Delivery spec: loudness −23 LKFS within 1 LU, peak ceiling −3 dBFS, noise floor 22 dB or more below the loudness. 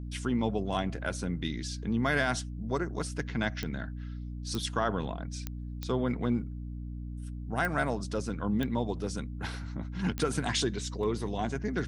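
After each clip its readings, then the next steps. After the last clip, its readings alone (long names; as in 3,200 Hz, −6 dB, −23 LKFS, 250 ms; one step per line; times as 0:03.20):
number of clicks 7; mains hum 60 Hz; hum harmonics up to 300 Hz; level of the hum −36 dBFS; integrated loudness −33.0 LKFS; sample peak −14.5 dBFS; target loudness −23.0 LKFS
→ click removal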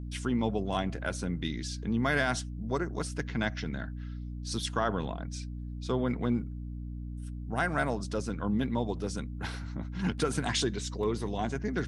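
number of clicks 0; mains hum 60 Hz; hum harmonics up to 300 Hz; level of the hum −36 dBFS
→ hum removal 60 Hz, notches 5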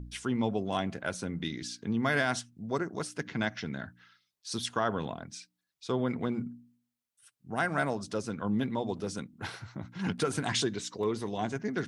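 mains hum none found; integrated loudness −33.0 LKFS; sample peak −15.0 dBFS; target loudness −23.0 LKFS
→ level +10 dB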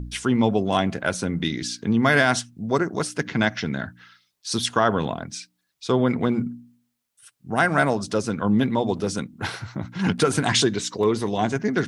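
integrated loudness −23.0 LKFS; sample peak −5.0 dBFS; background noise floor −75 dBFS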